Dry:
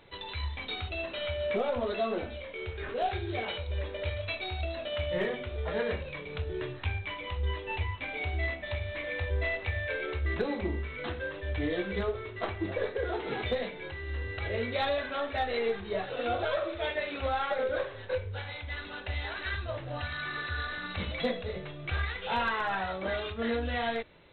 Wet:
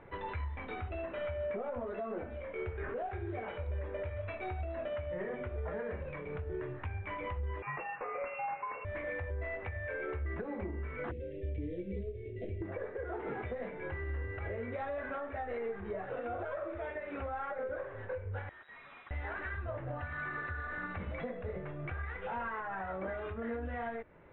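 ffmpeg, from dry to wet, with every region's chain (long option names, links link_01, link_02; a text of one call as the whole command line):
ffmpeg -i in.wav -filter_complex "[0:a]asettb=1/sr,asplit=3[link_01][link_02][link_03];[link_01]atrim=end=7.624[link_04];[link_02]atrim=start=7.62:end=8.85,asetpts=PTS-STARTPTS,afade=type=in:duration=0.004:curve=qsin,afade=type=out:start_time=1.226:duration=0.004:curve=qsin,equalizer=frequency=1600:width_type=o:width=0.82:gain=11,lowpass=frequency=2400:width_type=q:width=0.5098,lowpass=frequency=2400:width_type=q:width=0.6013,lowpass=frequency=2400:width_type=q:width=0.9,lowpass=frequency=2400:width_type=q:width=2.563,afreqshift=-2800[link_05];[link_03]atrim=start=8.846[link_06];[link_04][link_05]acrossfade=duration=0.004:curve1=hsin:curve2=qsin[link_07];[link_07][link_06]acrossfade=duration=0.004:curve1=qsin:curve2=hsin,asettb=1/sr,asplit=3[link_08][link_09][link_10];[link_08]atrim=end=11.114[link_11];[link_09]atrim=start=11.11:end=12.62,asetpts=PTS-STARTPTS,afade=type=in:duration=0.004:curve=qsin,afade=type=out:start_time=1.506:duration=0.004:curve=qsin,asuperstop=centerf=1100:order=8:qfactor=0.61,acrossover=split=160|1300|3500[link_12][link_13][link_14][link_15];[link_12]acompressor=threshold=-35dB:ratio=3[link_16];[link_13]acompressor=threshold=-40dB:ratio=3[link_17];[link_14]acompressor=threshold=-59dB:ratio=3[link_18];[link_15]acompressor=threshold=-55dB:ratio=3[link_19];[link_16][link_17][link_18][link_19]amix=inputs=4:normalize=0[link_20];[link_10]atrim=start=12.616[link_21];[link_11][link_20]acrossfade=duration=0.004:curve1=hsin:curve2=qsin[link_22];[link_22][link_21]acrossfade=duration=0.004:curve1=qsin:curve2=hsin,asettb=1/sr,asplit=3[link_23][link_24][link_25];[link_23]atrim=end=18.494[link_26];[link_24]atrim=start=18.49:end=19.11,asetpts=PTS-STARTPTS,afade=type=in:duration=0.004:curve=qsin,afade=type=out:start_time=0.616:duration=0.004:curve=qsin,bandreject=frequency=69.66:width_type=h:width=4,bandreject=frequency=139.32:width_type=h:width=4,bandreject=frequency=208.98:width_type=h:width=4,bandreject=frequency=278.64:width_type=h:width=4,bandreject=frequency=348.3:width_type=h:width=4,bandreject=frequency=417.96:width_type=h:width=4,bandreject=frequency=487.62:width_type=h:width=4,bandreject=frequency=557.28:width_type=h:width=4,bandreject=frequency=626.94:width_type=h:width=4,bandreject=frequency=696.6:width_type=h:width=4,bandreject=frequency=766.26:width_type=h:width=4,bandreject=frequency=835.92:width_type=h:width=4,bandreject=frequency=905.58:width_type=h:width=4,bandreject=frequency=975.24:width_type=h:width=4,bandreject=frequency=1044.9:width_type=h:width=4,bandreject=frequency=1114.56:width_type=h:width=4,bandreject=frequency=1184.22:width_type=h:width=4,bandreject=frequency=1253.88:width_type=h:width=4,bandreject=frequency=1323.54:width_type=h:width=4,bandreject=frequency=1393.2:width_type=h:width=4,bandreject=frequency=1462.86:width_type=h:width=4,bandreject=frequency=1532.52:width_type=h:width=4,bandreject=frequency=1602.18:width_type=h:width=4,bandreject=frequency=1671.84:width_type=h:width=4,bandreject=frequency=1741.5:width_type=h:width=4,aeval=exprs='(tanh(251*val(0)+0.45)-tanh(0.45))/251':channel_layout=same,lowpass=frequency=3300:width_type=q:width=0.5098,lowpass=frequency=3300:width_type=q:width=0.6013,lowpass=frequency=3300:width_type=q:width=0.9,lowpass=frequency=3300:width_type=q:width=2.563,afreqshift=-3900[link_27];[link_25]atrim=start=19.106[link_28];[link_26][link_27]acrossfade=duration=0.004:curve1=hsin:curve2=qsin[link_29];[link_29][link_28]acrossfade=duration=0.004:curve1=qsin:curve2=hsin,acompressor=threshold=-31dB:ratio=6,lowpass=frequency=1900:width=0.5412,lowpass=frequency=1900:width=1.3066,alimiter=level_in=10dB:limit=-24dB:level=0:latency=1:release=493,volume=-10dB,volume=4dB" out.wav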